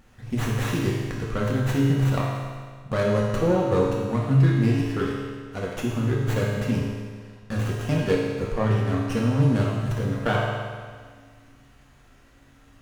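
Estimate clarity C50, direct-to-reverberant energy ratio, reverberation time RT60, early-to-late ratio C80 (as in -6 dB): 0.0 dB, -4.5 dB, 1.7 s, 2.0 dB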